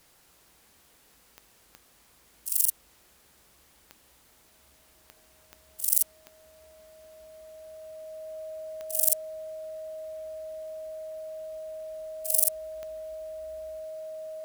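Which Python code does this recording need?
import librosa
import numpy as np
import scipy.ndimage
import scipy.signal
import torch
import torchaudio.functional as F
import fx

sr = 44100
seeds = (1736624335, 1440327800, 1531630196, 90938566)

y = fx.fix_declick_ar(x, sr, threshold=10.0)
y = fx.notch(y, sr, hz=630.0, q=30.0)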